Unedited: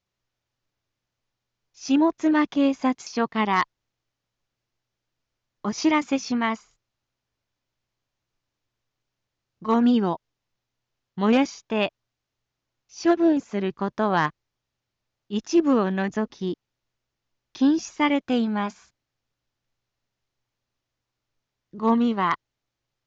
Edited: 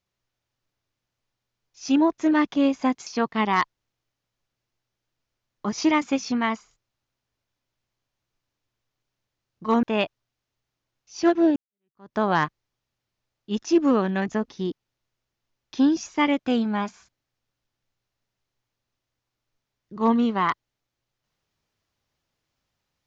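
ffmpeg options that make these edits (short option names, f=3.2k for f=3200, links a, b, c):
-filter_complex "[0:a]asplit=3[a][b][c];[a]atrim=end=9.832[d];[b]atrim=start=11.648:end=13.38,asetpts=PTS-STARTPTS,afade=t=out:st=1.728:d=0.004:c=hsin[e];[c]atrim=start=13.38,asetpts=PTS-STARTPTS,afade=t=in:d=0.6:c=exp[f];[e][f]concat=n=2:v=0:a=1[g];[d][g]acrossfade=d=0.004:c1=hsin:c2=hsin"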